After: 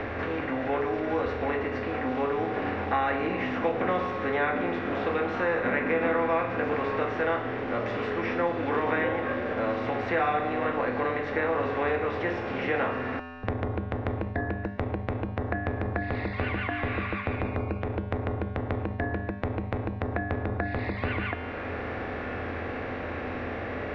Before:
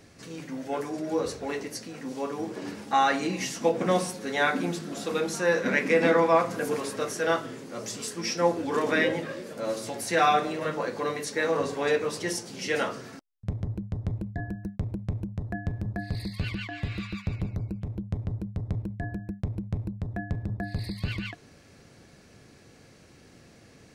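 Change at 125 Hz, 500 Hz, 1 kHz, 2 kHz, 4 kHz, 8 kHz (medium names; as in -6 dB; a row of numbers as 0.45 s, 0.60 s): 0.0 dB, 0.0 dB, 0.0 dB, +1.0 dB, -7.5 dB, under -25 dB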